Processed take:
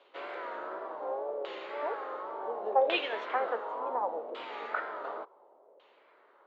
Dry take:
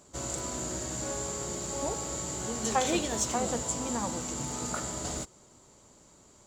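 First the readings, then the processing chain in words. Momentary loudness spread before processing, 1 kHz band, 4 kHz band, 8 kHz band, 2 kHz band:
6 LU, +2.5 dB, -3.5 dB, under -40 dB, +3.0 dB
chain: wow and flutter 92 cents; LFO low-pass saw down 0.69 Hz 560–3000 Hz; elliptic band-pass 430–3800 Hz, stop band 80 dB

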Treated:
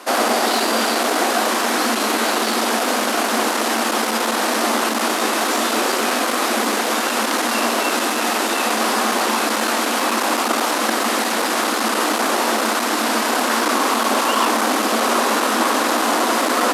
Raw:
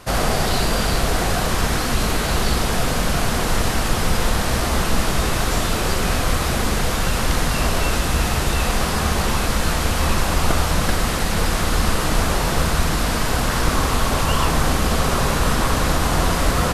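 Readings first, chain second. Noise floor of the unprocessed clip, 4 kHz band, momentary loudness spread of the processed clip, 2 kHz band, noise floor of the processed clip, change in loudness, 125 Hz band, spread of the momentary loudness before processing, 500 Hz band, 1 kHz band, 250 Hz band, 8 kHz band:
-21 dBFS, +3.0 dB, 2 LU, +4.0 dB, -21 dBFS, +2.5 dB, under -20 dB, 2 LU, +4.0 dB, +5.5 dB, +2.0 dB, +3.0 dB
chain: in parallel at -10.5 dB: sine folder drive 9 dB, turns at -4 dBFS; on the sum: rippled Chebyshev high-pass 220 Hz, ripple 3 dB

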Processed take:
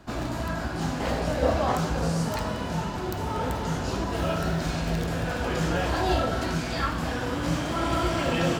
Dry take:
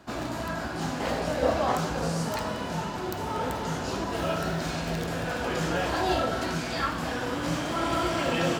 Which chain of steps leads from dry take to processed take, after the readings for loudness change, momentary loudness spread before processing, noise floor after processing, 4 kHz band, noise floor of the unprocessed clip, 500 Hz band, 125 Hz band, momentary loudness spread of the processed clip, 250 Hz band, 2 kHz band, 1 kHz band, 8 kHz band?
+1.5 dB, 6 LU, -31 dBFS, 0.0 dB, -33 dBFS, +0.5 dB, +5.0 dB, 5 LU, +2.0 dB, 0.0 dB, 0.0 dB, 0.0 dB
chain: low shelf 110 Hz +11.5 dB

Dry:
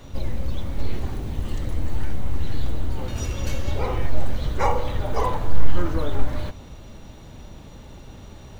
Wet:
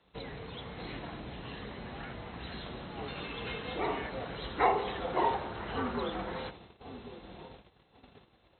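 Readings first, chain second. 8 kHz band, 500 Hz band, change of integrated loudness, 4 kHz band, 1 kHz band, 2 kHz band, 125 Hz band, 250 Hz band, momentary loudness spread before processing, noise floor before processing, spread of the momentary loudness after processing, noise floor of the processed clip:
n/a, -5.0 dB, -7.5 dB, -2.5 dB, -2.5 dB, -1.5 dB, -17.5 dB, -7.0 dB, 18 LU, -43 dBFS, 17 LU, -67 dBFS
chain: air absorption 60 m; dark delay 1.097 s, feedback 40%, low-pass 650 Hz, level -11.5 dB; FFT band-pass 120–4300 Hz; gate -42 dBFS, range -16 dB; low shelf 460 Hz -10.5 dB; frequency shift -85 Hz; ending taper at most 220 dB/s

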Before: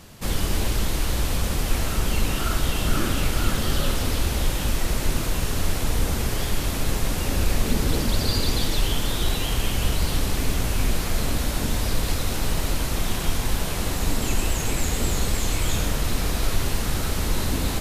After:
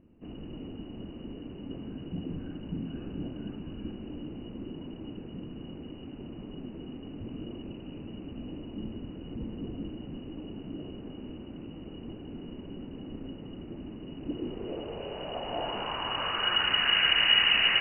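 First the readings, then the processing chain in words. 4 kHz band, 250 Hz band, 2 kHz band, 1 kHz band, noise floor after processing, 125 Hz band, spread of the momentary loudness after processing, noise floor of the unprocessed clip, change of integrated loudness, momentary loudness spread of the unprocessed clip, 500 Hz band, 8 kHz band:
+1.0 dB, -8.0 dB, -1.0 dB, -7.0 dB, -44 dBFS, -17.0 dB, 19 LU, -27 dBFS, -5.0 dB, 2 LU, -9.5 dB, under -40 dB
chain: inverted band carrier 2900 Hz; low-pass sweep 280 Hz -> 1900 Hz, 14.09–17.01

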